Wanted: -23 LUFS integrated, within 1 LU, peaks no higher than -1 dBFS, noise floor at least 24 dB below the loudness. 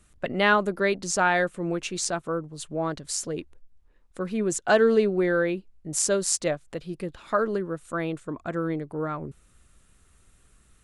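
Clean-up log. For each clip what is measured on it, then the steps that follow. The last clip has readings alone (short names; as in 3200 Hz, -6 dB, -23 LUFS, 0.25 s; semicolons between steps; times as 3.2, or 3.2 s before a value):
loudness -26.0 LUFS; peak -6.5 dBFS; loudness target -23.0 LUFS
-> gain +3 dB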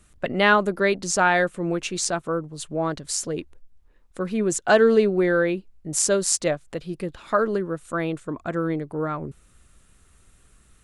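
loudness -23.5 LUFS; peak -3.5 dBFS; noise floor -58 dBFS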